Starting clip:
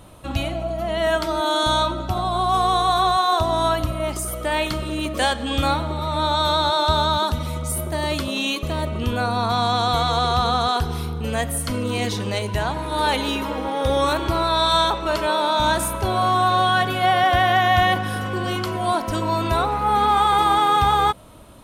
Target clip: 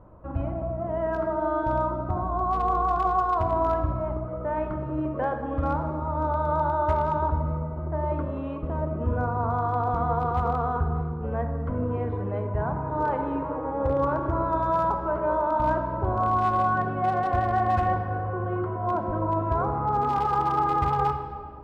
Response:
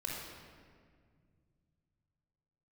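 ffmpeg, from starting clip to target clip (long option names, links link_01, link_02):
-filter_complex "[0:a]lowpass=frequency=1300:width=0.5412,lowpass=frequency=1300:width=1.3066,asoftclip=type=hard:threshold=-12.5dB,asplit=2[link_01][link_02];[1:a]atrim=start_sample=2205[link_03];[link_02][link_03]afir=irnorm=-1:irlink=0,volume=-3.5dB[link_04];[link_01][link_04]amix=inputs=2:normalize=0,volume=-8dB"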